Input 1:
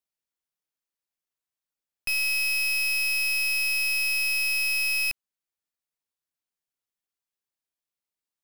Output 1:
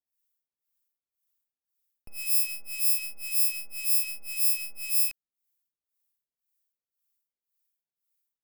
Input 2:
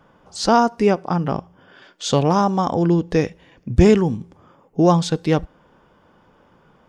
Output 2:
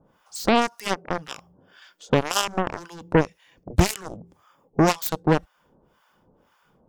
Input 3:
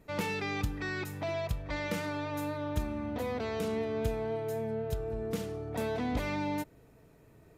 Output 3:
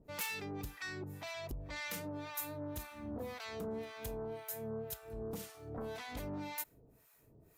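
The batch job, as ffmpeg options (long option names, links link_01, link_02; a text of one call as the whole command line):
ffmpeg -i in.wav -filter_complex "[0:a]acrossover=split=810[link_01][link_02];[link_01]aeval=exprs='val(0)*(1-1/2+1/2*cos(2*PI*1.9*n/s))':channel_layout=same[link_03];[link_02]aeval=exprs='val(0)*(1-1/2-1/2*cos(2*PI*1.9*n/s))':channel_layout=same[link_04];[link_03][link_04]amix=inputs=2:normalize=0,asplit=2[link_05][link_06];[link_06]acompressor=threshold=-32dB:ratio=6,volume=-1.5dB[link_07];[link_05][link_07]amix=inputs=2:normalize=0,aeval=exprs='0.531*(cos(1*acos(clip(val(0)/0.531,-1,1)))-cos(1*PI/2))+0.0376*(cos(2*acos(clip(val(0)/0.531,-1,1)))-cos(2*PI/2))+0.106*(cos(7*acos(clip(val(0)/0.531,-1,1)))-cos(7*PI/2))':channel_layout=same,aemphasis=mode=production:type=50fm" out.wav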